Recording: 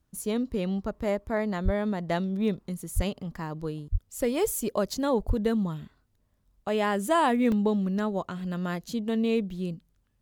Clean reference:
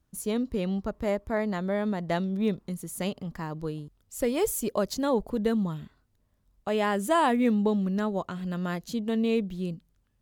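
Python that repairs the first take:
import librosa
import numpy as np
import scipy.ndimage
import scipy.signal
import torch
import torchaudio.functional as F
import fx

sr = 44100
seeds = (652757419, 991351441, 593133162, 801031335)

y = fx.fix_deplosive(x, sr, at_s=(1.64, 2.95, 3.91, 5.27))
y = fx.fix_interpolate(y, sr, at_s=(2.65, 4.13, 5.95, 7.52), length_ms=1.9)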